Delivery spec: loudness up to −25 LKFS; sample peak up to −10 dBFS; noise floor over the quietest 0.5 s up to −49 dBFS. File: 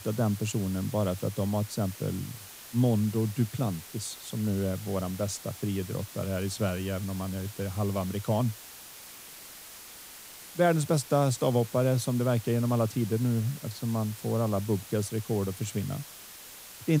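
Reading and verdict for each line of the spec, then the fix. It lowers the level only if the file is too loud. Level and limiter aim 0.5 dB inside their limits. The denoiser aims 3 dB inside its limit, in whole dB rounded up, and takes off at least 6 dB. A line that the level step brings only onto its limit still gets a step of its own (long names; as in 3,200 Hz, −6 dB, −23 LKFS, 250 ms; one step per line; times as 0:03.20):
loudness −30.0 LKFS: in spec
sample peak −11.5 dBFS: in spec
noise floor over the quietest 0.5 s −47 dBFS: out of spec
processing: broadband denoise 6 dB, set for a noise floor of −47 dBFS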